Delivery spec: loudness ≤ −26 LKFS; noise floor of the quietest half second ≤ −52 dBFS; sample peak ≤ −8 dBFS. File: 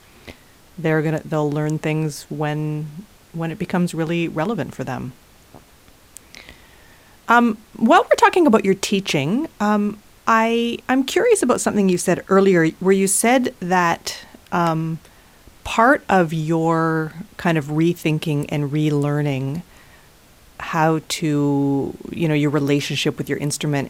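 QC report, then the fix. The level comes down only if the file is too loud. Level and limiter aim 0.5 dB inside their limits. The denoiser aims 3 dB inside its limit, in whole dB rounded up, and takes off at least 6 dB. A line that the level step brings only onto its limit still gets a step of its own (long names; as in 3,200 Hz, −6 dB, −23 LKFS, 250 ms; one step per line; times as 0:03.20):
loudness −19.0 LKFS: out of spec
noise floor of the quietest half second −49 dBFS: out of spec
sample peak −2.5 dBFS: out of spec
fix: level −7.5 dB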